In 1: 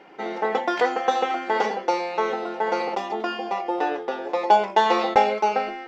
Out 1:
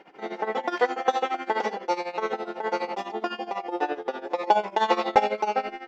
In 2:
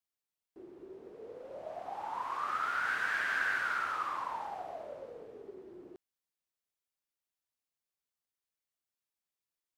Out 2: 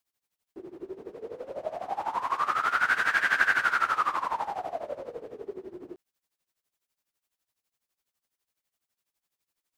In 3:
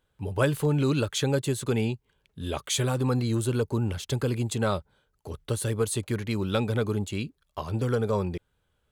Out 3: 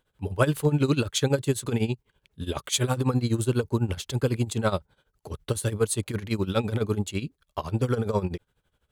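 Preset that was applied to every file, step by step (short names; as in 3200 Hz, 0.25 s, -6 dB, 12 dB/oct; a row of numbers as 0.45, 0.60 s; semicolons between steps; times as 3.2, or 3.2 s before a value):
tremolo 12 Hz, depth 83%; match loudness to -27 LUFS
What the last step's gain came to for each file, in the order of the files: 0.0, +11.5, +4.5 dB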